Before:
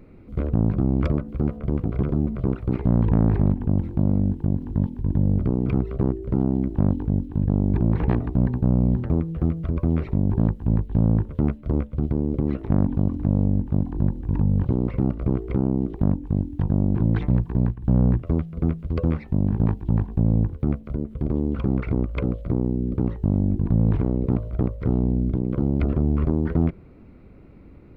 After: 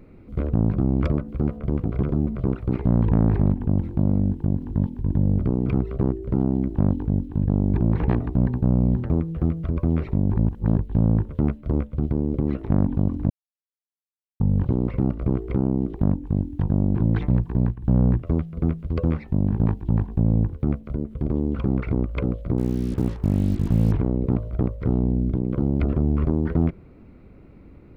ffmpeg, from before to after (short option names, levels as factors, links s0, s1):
-filter_complex "[0:a]asettb=1/sr,asplit=3[s0][s1][s2];[s0]atrim=end=22.584[s3];[s1]atrim=start=22.58:end=23.92,asetpts=PTS-STARTPTS,afade=t=in:d=0.004:c=qsin,afade=t=out:st=1.336:d=0.004:c=qsin,acrusher=bits=6:mix=0:aa=0.5[s4];[s2]atrim=start=23.916[s5];[s3][s4]acrossfade=d=0.004:c1=hsin:c2=qsin[s6];[s6][s5]acrossfade=d=0.004:c1=qsin:c2=hsin,asplit=5[s7][s8][s9][s10][s11];[s7]atrim=end=10.362[s12];[s8]atrim=start=10.358:end=10.792,asetpts=PTS-STARTPTS,areverse[s13];[s9]atrim=start=10.788:end=13.3,asetpts=PTS-STARTPTS,afade=t=out:st=2.508:d=0.004:c=hsin[s14];[s10]atrim=start=13.3:end=14.4,asetpts=PTS-STARTPTS,volume=0[s15];[s11]atrim=start=14.4,asetpts=PTS-STARTPTS,afade=t=in:d=0.004:c=hsin[s16];[s12][s13]acrossfade=d=0.004:c1=hsin:c2=hsin[s17];[s14][s15][s16]concat=n=3:v=0:a=1[s18];[s17][s18]acrossfade=d=0.004:c1=hsin:c2=hsin"